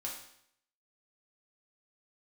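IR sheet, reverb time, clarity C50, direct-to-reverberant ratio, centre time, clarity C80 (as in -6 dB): 0.70 s, 4.5 dB, -3.0 dB, 35 ms, 8.0 dB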